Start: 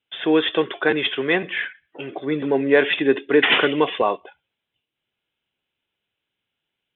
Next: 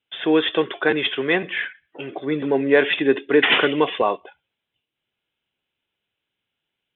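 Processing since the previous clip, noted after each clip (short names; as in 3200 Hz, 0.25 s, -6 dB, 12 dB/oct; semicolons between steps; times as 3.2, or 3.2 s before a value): nothing audible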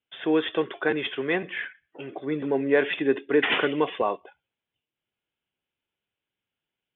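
air absorption 220 m; gain -4.5 dB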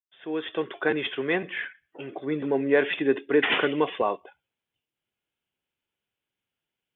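opening faded in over 0.85 s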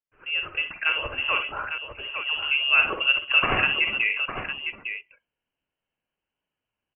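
wow and flutter 19 cents; tapped delay 51/63/856 ms -9.5/-10.5/-8 dB; inverted band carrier 3100 Hz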